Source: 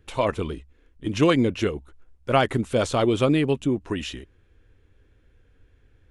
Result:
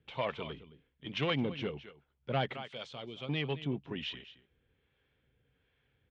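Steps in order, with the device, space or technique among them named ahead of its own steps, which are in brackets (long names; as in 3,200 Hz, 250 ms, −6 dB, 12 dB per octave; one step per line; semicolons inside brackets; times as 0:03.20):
0:02.53–0:03.29: first-order pre-emphasis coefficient 0.8
single-tap delay 218 ms −16.5 dB
guitar amplifier with harmonic tremolo (two-band tremolo in antiphase 1.3 Hz, depth 50%, crossover 520 Hz; soft clipping −16.5 dBFS, distortion −15 dB; loudspeaker in its box 92–4,400 Hz, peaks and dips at 97 Hz −9 dB, 140 Hz +8 dB, 320 Hz −7 dB, 810 Hz +3 dB, 2,200 Hz +5 dB, 3,200 Hz +8 dB)
level −8 dB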